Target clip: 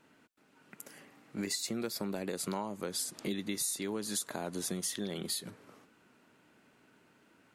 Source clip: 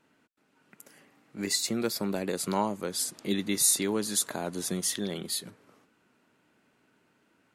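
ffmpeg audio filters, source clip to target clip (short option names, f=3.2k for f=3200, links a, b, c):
-af "acompressor=threshold=-36dB:ratio=6,volume=3dB"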